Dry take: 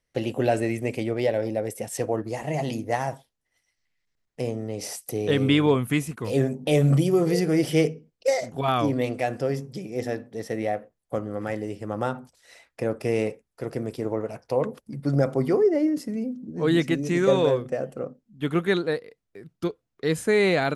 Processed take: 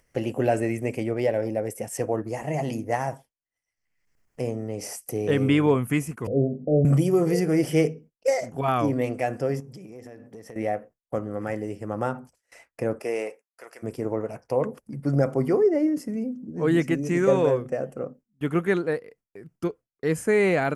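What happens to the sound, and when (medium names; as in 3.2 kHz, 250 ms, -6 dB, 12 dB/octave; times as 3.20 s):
6.27–6.85 s: steep low-pass 730 Hz 96 dB/octave
9.60–10.56 s: compression 10:1, threshold -38 dBFS
12.99–13.82 s: high-pass 340 Hz -> 1.4 kHz
whole clip: gate with hold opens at -40 dBFS; peaking EQ 3.8 kHz -15 dB 0.42 oct; upward compressor, threshold -43 dBFS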